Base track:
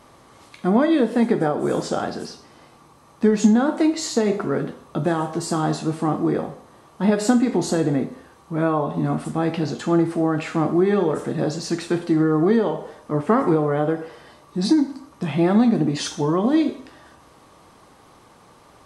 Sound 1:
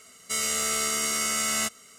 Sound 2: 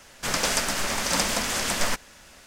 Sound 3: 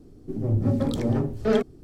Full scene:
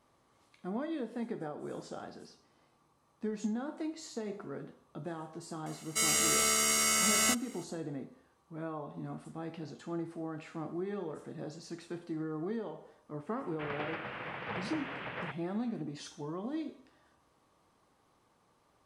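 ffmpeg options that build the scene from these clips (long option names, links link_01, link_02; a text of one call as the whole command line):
ffmpeg -i bed.wav -i cue0.wav -i cue1.wav -filter_complex "[0:a]volume=-19.5dB[link_01];[2:a]highpass=frequency=180:width_type=q:width=0.5412,highpass=frequency=180:width_type=q:width=1.307,lowpass=frequency=2900:width_type=q:width=0.5176,lowpass=frequency=2900:width_type=q:width=0.7071,lowpass=frequency=2900:width_type=q:width=1.932,afreqshift=-73[link_02];[1:a]atrim=end=1.98,asetpts=PTS-STARTPTS,volume=-1.5dB,afade=type=in:duration=0.004:curve=hsin,afade=type=out:start_time=1.976:duration=0.004:curve=hsin,adelay=5660[link_03];[link_02]atrim=end=2.46,asetpts=PTS-STARTPTS,volume=-11.5dB,afade=type=in:duration=0.004:curve=hsin,afade=type=out:start_time=2.456:duration=0.004:curve=hsin,adelay=13360[link_04];[link_01][link_03][link_04]amix=inputs=3:normalize=0" out.wav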